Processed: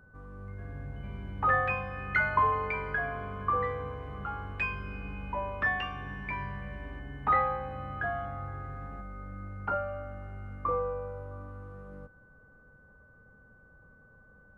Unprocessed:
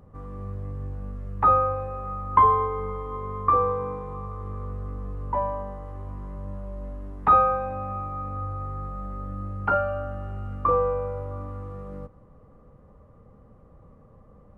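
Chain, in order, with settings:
steady tone 1,500 Hz −50 dBFS
delay with pitch and tempo change per echo 481 ms, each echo +6 semitones, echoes 2
level −8.5 dB

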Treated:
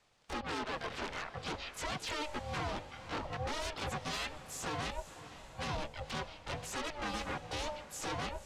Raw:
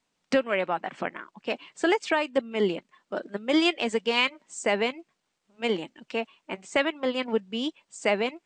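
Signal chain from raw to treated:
one-sided soft clipper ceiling −18 dBFS
high-pass filter 49 Hz 12 dB per octave
mains-hum notches 50/100/150/200/250/300 Hz
downward compressor 16 to 1, threshold −34 dBFS, peak gain reduction 15 dB
brickwall limiter −30 dBFS, peak gain reduction 8.5 dB
wave folding −39.5 dBFS
ring modulation 300 Hz
pitch-shifted copies added +7 semitones −2 dB
high-frequency loss of the air 57 metres
feedback delay with all-pass diffusion 505 ms, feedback 45%, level −13 dB
level +8.5 dB

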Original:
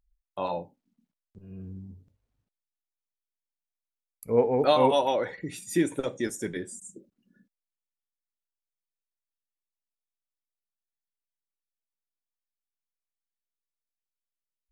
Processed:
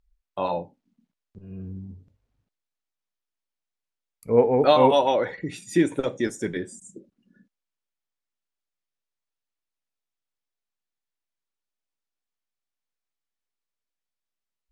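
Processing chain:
high-frequency loss of the air 61 metres
level +4.5 dB

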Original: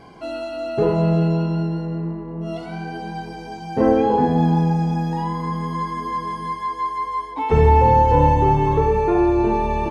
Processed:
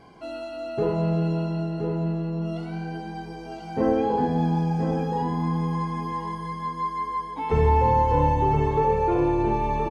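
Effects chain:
single-tap delay 1,021 ms −7 dB
level −6 dB

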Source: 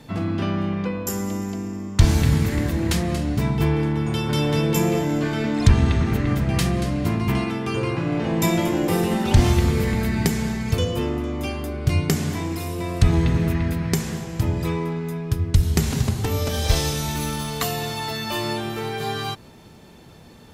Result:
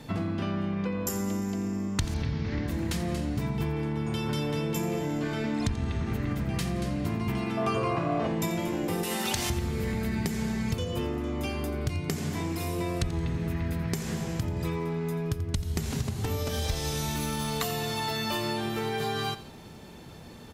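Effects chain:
0:02.14–0:02.68: Butterworth low-pass 5,700 Hz 48 dB per octave
0:09.03–0:09.50: spectral tilt +3.5 dB per octave
downward compressor 6 to 1, threshold −27 dBFS, peak gain reduction 17.5 dB
0:07.57–0:08.27: hollow resonant body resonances 680/1,100 Hz, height 17 dB, ringing for 45 ms
on a send: repeating echo 86 ms, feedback 36%, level −15 dB

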